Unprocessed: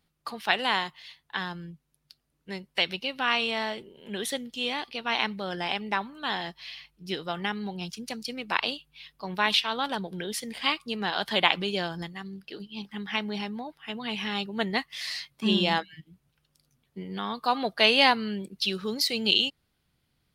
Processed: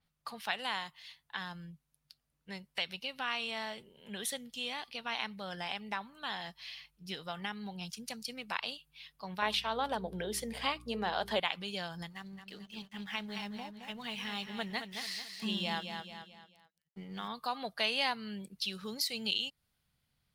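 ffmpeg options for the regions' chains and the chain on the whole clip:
-filter_complex "[0:a]asettb=1/sr,asplit=3[s0][s1][s2];[s0]atrim=end=9.424[s3];[s1]atrim=start=9.42:end=11.4,asetpts=PTS-STARTPTS,afade=t=in:d=0.004:c=qsin,afade=t=out:st=1.976:d=0.004:c=qsin,equalizer=f=470:t=o:w=2.4:g=12.5,bandreject=f=50:t=h:w=6,bandreject=f=100:t=h:w=6,bandreject=f=150:t=h:w=6,bandreject=f=200:t=h:w=6,bandreject=f=250:t=h:w=6,bandreject=f=300:t=h:w=6,bandreject=f=350:t=h:w=6,bandreject=f=400:t=h:w=6,bandreject=f=450:t=h:w=6,aeval=exprs='val(0)+0.00631*(sin(2*PI*60*n/s)+sin(2*PI*2*60*n/s)/2+sin(2*PI*3*60*n/s)/3+sin(2*PI*4*60*n/s)/4+sin(2*PI*5*60*n/s)/5)':c=same[s4];[s2]atrim=start=11.396[s5];[s3][s4]acrossfade=d=0.004:c1=hsin:c2=qsin[s6];[s6][s5]acrossfade=d=0.004:c1=qsin:c2=hsin,asettb=1/sr,asplit=3[s7][s8][s9];[s7]atrim=end=12.104[s10];[s8]atrim=start=12.1:end=17.28,asetpts=PTS-STARTPTS,afade=t=in:d=0.004:c=qsin,afade=t=out:st=5.176:d=0.004:c=qsin,aeval=exprs='sgn(val(0))*max(abs(val(0))-0.00178,0)':c=same,aecho=1:1:219|438|657|876:0.376|0.139|0.0515|0.019,atrim=end_sample=228438[s11];[s9]atrim=start=17.276[s12];[s10][s11]acrossfade=d=0.004:c1=hsin:c2=qsin[s13];[s13][s12]acrossfade=d=0.004:c1=qsin:c2=hsin,equalizer=f=340:t=o:w=0.75:g=-9,acompressor=threshold=0.0178:ratio=1.5,adynamicequalizer=threshold=0.00447:dfrequency=5900:dqfactor=0.7:tfrequency=5900:tqfactor=0.7:attack=5:release=100:ratio=0.375:range=3:mode=boostabove:tftype=highshelf,volume=0.562"

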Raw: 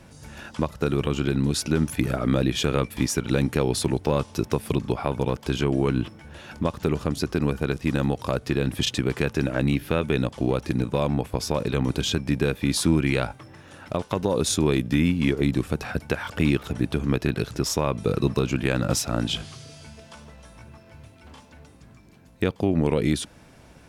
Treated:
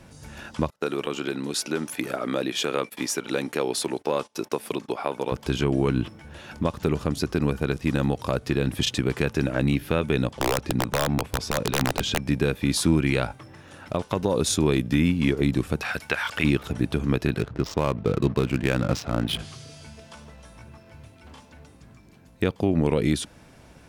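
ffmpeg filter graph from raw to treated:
-filter_complex "[0:a]asettb=1/sr,asplit=3[s0][s1][s2];[s0]atrim=end=0.704[s3];[s1]atrim=start=0.7:end=5.32,asetpts=PTS-STARTPTS,afade=t=in:d=0.004:c=qsin,afade=t=out:st=4.616:d=0.004:c=qsin,highpass=340,agate=range=0.0794:threshold=0.00708:ratio=16:release=100:detection=peak[s4];[s2]atrim=start=5.316[s5];[s3][s4]acrossfade=d=0.004:c1=hsin:c2=qsin[s6];[s6][s5]acrossfade=d=0.004:c1=qsin:c2=hsin,asettb=1/sr,asplit=3[s7][s8][s9];[s7]atrim=end=10.334[s10];[s8]atrim=start=10.33:end=12.22,asetpts=PTS-STARTPTS,afade=t=in:d=0.004:c=qsin,afade=t=out:st=1.886:d=0.004:c=qsin,highshelf=f=8500:g=-11.5,aeval=exprs='(mod(4.73*val(0)+1,2)-1)/4.73':c=same[s11];[s9]atrim=start=12.216[s12];[s10][s11]acrossfade=d=0.004:c1=hsin:c2=qsin[s13];[s13][s12]acrossfade=d=0.004:c1=qsin:c2=hsin,asettb=1/sr,asplit=3[s14][s15][s16];[s14]atrim=end=15.814[s17];[s15]atrim=start=15.81:end=16.44,asetpts=PTS-STARTPTS,afade=t=in:d=0.004:c=qsin,afade=t=out:st=0.626:d=0.004:c=qsin,acrossover=split=3700[s18][s19];[s19]acompressor=threshold=0.00355:ratio=4:attack=1:release=60[s20];[s18][s20]amix=inputs=2:normalize=0,tiltshelf=f=740:g=-9.5[s21];[s16]atrim=start=16.436[s22];[s17][s21]acrossfade=d=0.004:c1=hsin:c2=qsin[s23];[s23][s22]acrossfade=d=0.004:c1=qsin:c2=hsin,asettb=1/sr,asplit=3[s24][s25][s26];[s24]atrim=end=17.404[s27];[s25]atrim=start=17.4:end=19.39,asetpts=PTS-STARTPTS,afade=t=in:d=0.004:c=qsin,afade=t=out:st=1.986:d=0.004:c=qsin,lowpass=4900,adynamicsmooth=sensitivity=8:basefreq=550[s28];[s26]atrim=start=19.386[s29];[s27][s28]acrossfade=d=0.004:c1=hsin:c2=qsin[s30];[s30][s29]acrossfade=d=0.004:c1=qsin:c2=hsin"

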